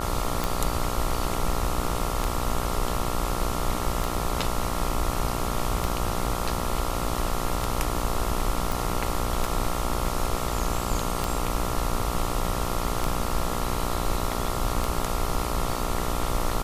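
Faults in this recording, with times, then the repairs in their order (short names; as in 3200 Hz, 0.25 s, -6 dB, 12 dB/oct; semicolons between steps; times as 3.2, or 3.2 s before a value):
buzz 60 Hz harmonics 23 -31 dBFS
tick 33 1/3 rpm
8.72 pop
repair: de-click; de-hum 60 Hz, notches 23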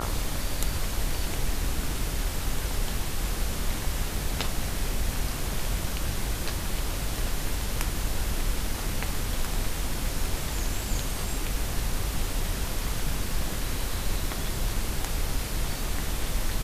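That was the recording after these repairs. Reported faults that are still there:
none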